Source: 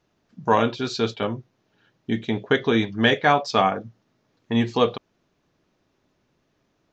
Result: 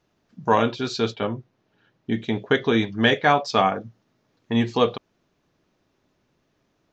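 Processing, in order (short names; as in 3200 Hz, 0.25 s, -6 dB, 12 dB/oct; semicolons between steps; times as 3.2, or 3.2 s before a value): 1.12–2.19 high shelf 5100 Hz -8 dB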